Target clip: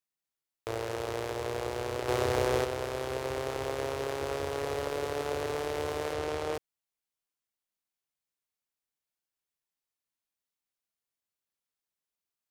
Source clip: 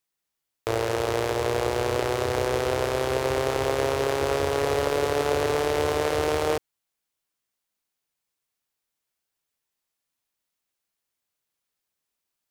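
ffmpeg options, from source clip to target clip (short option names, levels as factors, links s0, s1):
-filter_complex "[0:a]asettb=1/sr,asplit=3[s0][s1][s2];[s0]atrim=end=2.084[s3];[s1]atrim=start=2.08:end=2.65,asetpts=PTS-STARTPTS,afade=t=in:d=0.004:c=qsin,afade=t=out:st=0.566:d=0.004:c=qsin,acontrast=75[s4];[s2]atrim=start=2.646[s5];[s3][s4]acrossfade=d=0.004:c1=hsin:c2=qsin[s6];[s6][s5]acrossfade=d=0.004:c1=qsin:c2=hsin,asettb=1/sr,asplit=3[s7][s8][s9];[s7]atrim=end=6.134[s10];[s8]atrim=start=6.13:end=6.54,asetpts=PTS-STARTPTS,afade=t=in:d=0.004:c=qsin,afade=t=out:st=0.406:d=0.004:c=qsin,highshelf=f=11000:g=-9[s11];[s9]atrim=start=6.536[s12];[s10][s11]acrossfade=d=0.004:c1=hsin:c2=qsin[s13];[s13][s12]acrossfade=d=0.004:c1=qsin:c2=hsin,volume=0.355"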